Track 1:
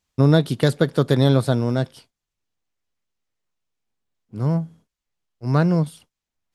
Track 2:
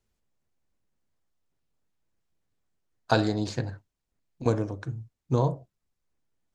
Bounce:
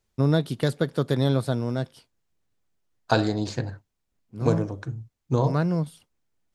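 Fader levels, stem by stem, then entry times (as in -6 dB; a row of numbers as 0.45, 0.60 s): -6.0, +1.5 dB; 0.00, 0.00 s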